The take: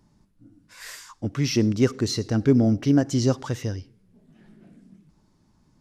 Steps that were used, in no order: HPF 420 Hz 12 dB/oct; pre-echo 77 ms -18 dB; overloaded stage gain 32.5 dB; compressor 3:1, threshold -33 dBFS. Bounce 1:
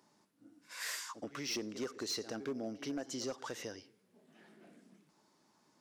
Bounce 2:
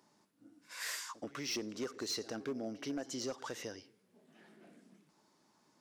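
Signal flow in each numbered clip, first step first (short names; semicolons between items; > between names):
pre-echo > compressor > HPF > overloaded stage; compressor > HPF > overloaded stage > pre-echo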